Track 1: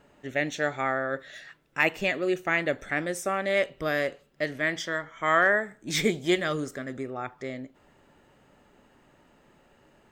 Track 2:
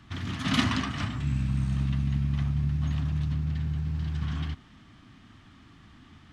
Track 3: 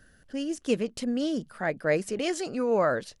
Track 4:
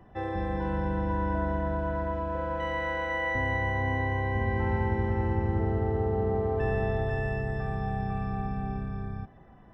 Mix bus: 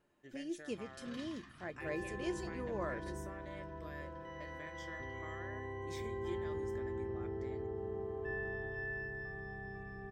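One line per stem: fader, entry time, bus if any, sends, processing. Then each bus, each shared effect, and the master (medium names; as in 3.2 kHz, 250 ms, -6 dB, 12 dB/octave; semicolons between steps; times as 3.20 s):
-5.5 dB, 0.00 s, no send, compression, threshold -32 dBFS, peak gain reduction 14 dB
-14.0 dB, 0.60 s, no send, none
+2.0 dB, 0.00 s, no send, gate with hold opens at -46 dBFS; auto duck -6 dB, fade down 0.80 s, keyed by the first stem
-5.5 dB, 1.65 s, no send, small resonant body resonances 390/1700/2800 Hz, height 14 dB, ringing for 95 ms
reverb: none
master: feedback comb 350 Hz, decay 0.17 s, harmonics odd, mix 80%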